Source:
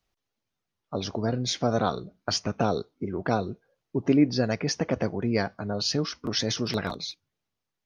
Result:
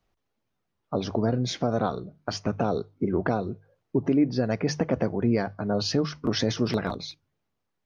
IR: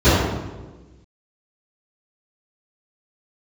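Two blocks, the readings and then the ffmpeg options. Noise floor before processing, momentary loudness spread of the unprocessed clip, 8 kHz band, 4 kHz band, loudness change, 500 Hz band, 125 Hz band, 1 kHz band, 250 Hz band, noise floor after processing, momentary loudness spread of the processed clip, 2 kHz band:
-85 dBFS, 10 LU, no reading, -3.5 dB, +0.5 dB, +1.5 dB, +1.5 dB, -0.5 dB, +1.5 dB, -79 dBFS, 8 LU, -1.5 dB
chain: -af "highshelf=f=2400:g=-11,bandreject=f=50:t=h:w=6,bandreject=f=100:t=h:w=6,bandreject=f=150:t=h:w=6,alimiter=limit=0.106:level=0:latency=1:release=438,volume=2.11"

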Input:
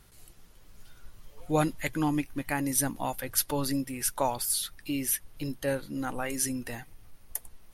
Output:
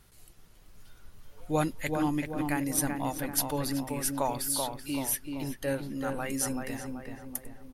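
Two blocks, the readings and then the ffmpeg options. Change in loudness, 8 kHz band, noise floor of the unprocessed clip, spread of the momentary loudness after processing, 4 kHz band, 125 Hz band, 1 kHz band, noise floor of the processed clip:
-1.0 dB, -2.0 dB, -55 dBFS, 10 LU, -1.5 dB, -0.5 dB, -0.5 dB, -56 dBFS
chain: -filter_complex "[0:a]asplit=2[s0][s1];[s1]adelay=383,lowpass=f=1900:p=1,volume=0.631,asplit=2[s2][s3];[s3]adelay=383,lowpass=f=1900:p=1,volume=0.5,asplit=2[s4][s5];[s5]adelay=383,lowpass=f=1900:p=1,volume=0.5,asplit=2[s6][s7];[s7]adelay=383,lowpass=f=1900:p=1,volume=0.5,asplit=2[s8][s9];[s9]adelay=383,lowpass=f=1900:p=1,volume=0.5,asplit=2[s10][s11];[s11]adelay=383,lowpass=f=1900:p=1,volume=0.5[s12];[s0][s2][s4][s6][s8][s10][s12]amix=inputs=7:normalize=0,volume=0.794"

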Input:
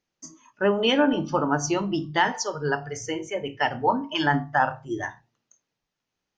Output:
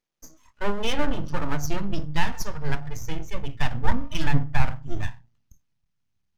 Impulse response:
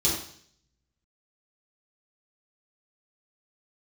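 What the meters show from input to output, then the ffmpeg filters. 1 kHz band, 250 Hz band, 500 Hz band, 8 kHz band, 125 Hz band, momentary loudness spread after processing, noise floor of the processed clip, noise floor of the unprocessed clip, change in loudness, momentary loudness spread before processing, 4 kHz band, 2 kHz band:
-7.5 dB, -5.5 dB, -9.0 dB, -5.5 dB, +5.0 dB, 9 LU, -74 dBFS, -84 dBFS, -5.0 dB, 10 LU, -5.5 dB, -6.0 dB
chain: -af "aeval=exprs='max(val(0),0)':c=same,asubboost=boost=9:cutoff=150,volume=0.891"

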